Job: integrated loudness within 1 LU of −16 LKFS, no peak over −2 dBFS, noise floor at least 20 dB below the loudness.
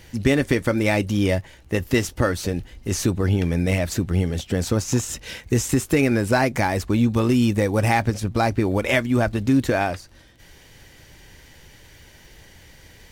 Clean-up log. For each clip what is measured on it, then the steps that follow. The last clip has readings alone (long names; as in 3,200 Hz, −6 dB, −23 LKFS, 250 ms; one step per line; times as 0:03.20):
crackle rate 30 per second; integrated loudness −22.0 LKFS; sample peak −5.5 dBFS; target loudness −16.0 LKFS
→ click removal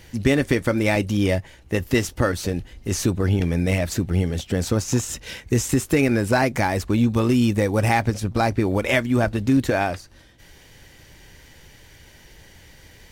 crackle rate 0.31 per second; integrated loudness −22.0 LKFS; sample peak −5.5 dBFS; target loudness −16.0 LKFS
→ level +6 dB
brickwall limiter −2 dBFS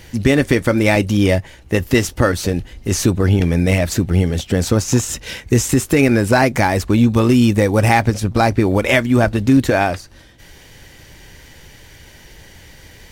integrated loudness −16.0 LKFS; sample peak −2.0 dBFS; background noise floor −43 dBFS